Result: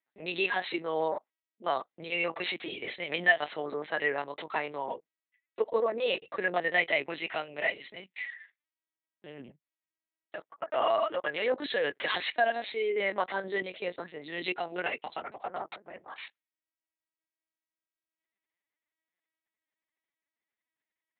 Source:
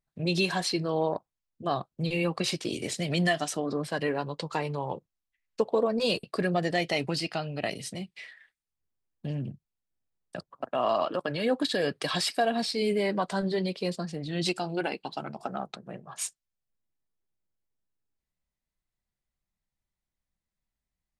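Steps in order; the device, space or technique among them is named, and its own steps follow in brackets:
talking toy (linear-prediction vocoder at 8 kHz pitch kept; high-pass filter 400 Hz 12 dB per octave; parametric band 2,000 Hz +8.5 dB 0.49 octaves)

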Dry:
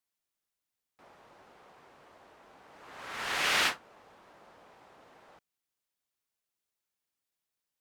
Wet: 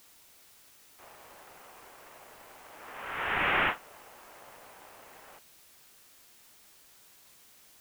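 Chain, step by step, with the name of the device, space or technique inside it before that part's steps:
army field radio (band-pass filter 390–3,300 Hz; variable-slope delta modulation 16 kbit/s; white noise bed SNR 19 dB)
level +4.5 dB

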